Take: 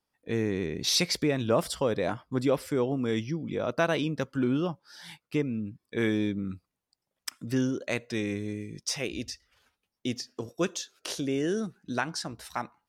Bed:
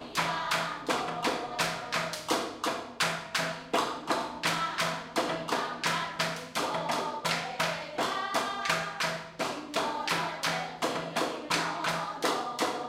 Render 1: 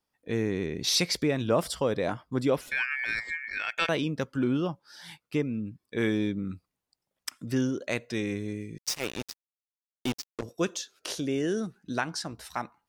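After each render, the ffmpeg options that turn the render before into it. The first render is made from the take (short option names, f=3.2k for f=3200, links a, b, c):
-filter_complex "[0:a]asettb=1/sr,asplit=3[a][b][c];[a]atrim=end=2.614[d];[b]atrim=start=2.61:end=3.89,asetpts=PTS-STARTPTS,afade=t=in:d=0.004:c=qsin,afade=t=out:st=1.276:d=0.004:c=qsin,aeval=exprs='val(0)*sin(2*PI*2000*n/s)':c=same[e];[c]atrim=start=3.886[f];[d][e]acrossfade=d=0.004:c1=hsin:c2=qsin[g];[g][f]acrossfade=d=0.004:c1=qsin:c2=hsin,asettb=1/sr,asplit=3[h][i][j];[h]atrim=end=8.784[k];[i]atrim=start=8.78:end=10.43,asetpts=PTS-STARTPTS,afade=t=in:d=0.004:c=qsin,afade=t=out:st=1.646:d=0.004:c=qsin,acrusher=bits=4:mix=0:aa=0.5[l];[j]atrim=start=10.426[m];[k][l]acrossfade=d=0.004:c1=hsin:c2=qsin[n];[n][m]acrossfade=d=0.004:c1=qsin:c2=hsin"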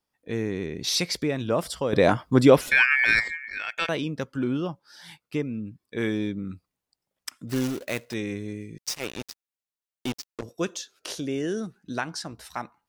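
-filter_complex "[0:a]asettb=1/sr,asplit=3[a][b][c];[a]atrim=end=7.494[d];[b]atrim=start=7.49:end=8.14,asetpts=PTS-STARTPTS,afade=t=in:d=0.004:c=qsin,afade=t=out:st=0.646:d=0.004:c=qsin,acrusher=bits=2:mode=log:mix=0:aa=0.000001[e];[c]atrim=start=8.136[f];[d][e]acrossfade=d=0.004:c1=hsin:c2=qsin[g];[g][f]acrossfade=d=0.004:c1=qsin:c2=hsin,asplit=3[h][i][j];[h]atrim=end=1.932[k];[i]atrim=start=1.928:end=3.282,asetpts=PTS-STARTPTS,volume=10.5dB[l];[j]atrim=start=3.278[m];[k][l]acrossfade=d=0.004:c1=hsin:c2=hsin[n];[n][m]acrossfade=d=0.004:c1=hsin:c2=hsin"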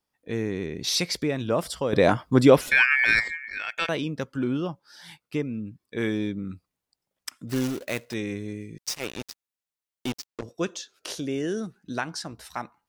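-filter_complex "[0:a]asettb=1/sr,asplit=3[a][b][c];[a]atrim=end=10.264[d];[b]atrim=start=10.26:end=10.94,asetpts=PTS-STARTPTS,afade=t=in:d=0.004:c=qsin,afade=t=out:st=0.676:d=0.004:c=qsin,equalizer=f=13k:w=0.87:g=-9.5[e];[c]atrim=start=10.936[f];[d][e]acrossfade=d=0.004:c1=hsin:c2=qsin[g];[g][f]acrossfade=d=0.004:c1=qsin:c2=hsin"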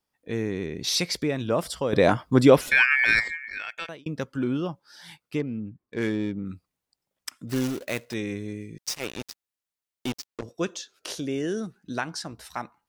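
-filter_complex "[0:a]asettb=1/sr,asplit=3[a][b][c];[a]atrim=end=5.394[d];[b]atrim=start=5.39:end=6.46,asetpts=PTS-STARTPTS,afade=t=in:d=0.004:c=qsin,afade=t=out:st=1.066:d=0.004:c=qsin,adynamicsmooth=sensitivity=5.5:basefreq=1.7k[e];[c]atrim=start=6.456[f];[d][e]acrossfade=d=0.004:c1=hsin:c2=qsin[g];[g][f]acrossfade=d=0.004:c1=qsin:c2=hsin,asplit=2[h][i];[h]atrim=end=4.06,asetpts=PTS-STARTPTS,afade=t=out:st=3.5:d=0.56[j];[i]atrim=start=4.06,asetpts=PTS-STARTPTS,afade=t=in:d=0.004:c=hsin[k];[j][k]concat=n=2:v=0:a=1"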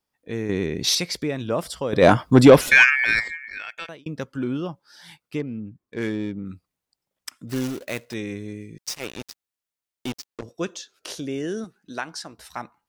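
-filter_complex "[0:a]asettb=1/sr,asplit=3[a][b][c];[a]atrim=end=0.494[d];[b]atrim=start=0.49:end=0.95,asetpts=PTS-STARTPTS,afade=t=in:d=0.004:c=qsin,afade=t=out:st=0.456:d=0.004:c=qsin,acontrast=56[e];[c]atrim=start=0.946[f];[d][e]acrossfade=d=0.004:c1=hsin:c2=qsin[g];[g][f]acrossfade=d=0.004:c1=qsin:c2=hsin,asplit=3[h][i][j];[h]afade=t=out:st=2.01:d=0.02[k];[i]acontrast=85,afade=t=in:st=2.01:d=0.02,afade=t=out:st=2.89:d=0.02[l];[j]afade=t=in:st=2.89:d=0.02[m];[k][l][m]amix=inputs=3:normalize=0,asettb=1/sr,asplit=3[n][o][p];[n]atrim=end=11.644[q];[o]atrim=start=11.64:end=12.39,asetpts=PTS-STARTPTS,afade=t=in:d=0.004:c=qsin,afade=t=out:st=0.746:d=0.004:c=qsin,equalizer=f=79:t=o:w=2.7:g=-11.5[r];[p]atrim=start=12.386[s];[q][r]acrossfade=d=0.004:c1=hsin:c2=qsin[t];[t][s]acrossfade=d=0.004:c1=qsin:c2=hsin"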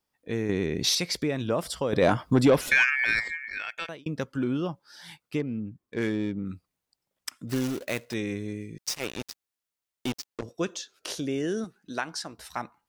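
-af "acompressor=threshold=-24dB:ratio=2"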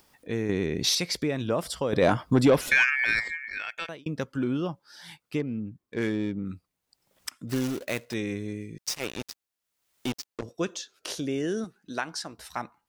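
-af "acompressor=mode=upward:threshold=-46dB:ratio=2.5"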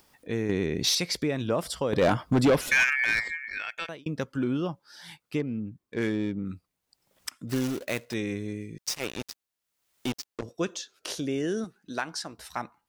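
-af "asoftclip=type=hard:threshold=-16.5dB"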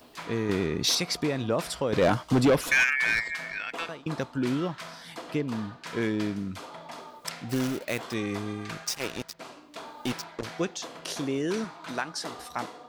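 -filter_complex "[1:a]volume=-11.5dB[a];[0:a][a]amix=inputs=2:normalize=0"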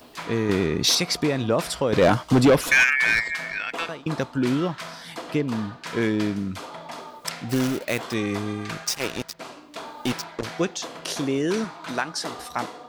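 -af "volume=5dB"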